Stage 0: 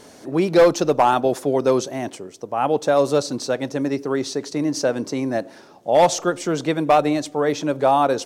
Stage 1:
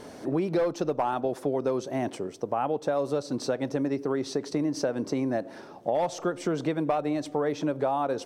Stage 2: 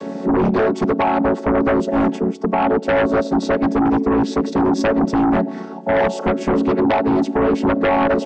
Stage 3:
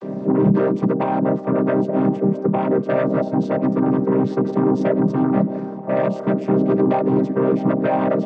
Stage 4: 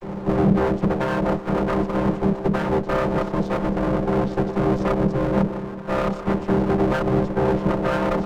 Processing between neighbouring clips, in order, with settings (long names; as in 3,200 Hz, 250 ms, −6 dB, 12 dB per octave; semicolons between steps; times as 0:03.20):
high-shelf EQ 2,400 Hz −8.5 dB; notch filter 6,800 Hz, Q 14; downward compressor 6 to 1, threshold −27 dBFS, peak gain reduction 15.5 dB; level +2.5 dB
channel vocoder with a chord as carrier minor triad, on F#3; in parallel at −5.5 dB: sine wavefolder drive 13 dB, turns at −14 dBFS; on the sum: level +4 dB
channel vocoder with a chord as carrier minor triad, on C3; echo through a band-pass that steps 327 ms, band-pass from 350 Hz, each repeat 0.7 octaves, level −10 dB
lower of the sound and its delayed copy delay 5.7 ms; level −1 dB